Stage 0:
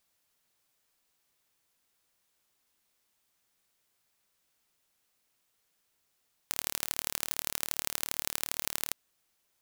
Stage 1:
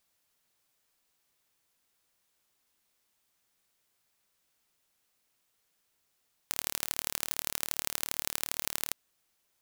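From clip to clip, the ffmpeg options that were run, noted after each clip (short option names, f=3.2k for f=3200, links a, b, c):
-af anull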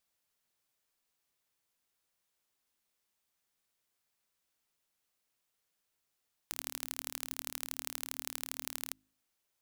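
-af "bandreject=f=52.25:t=h:w=4,bandreject=f=104.5:t=h:w=4,bandreject=f=156.75:t=h:w=4,bandreject=f=209:t=h:w=4,bandreject=f=261.25:t=h:w=4,bandreject=f=313.5:t=h:w=4,volume=-6.5dB"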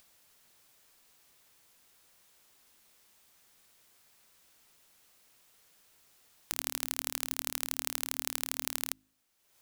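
-af "acompressor=mode=upward:threshold=-58dB:ratio=2.5,volume=5.5dB"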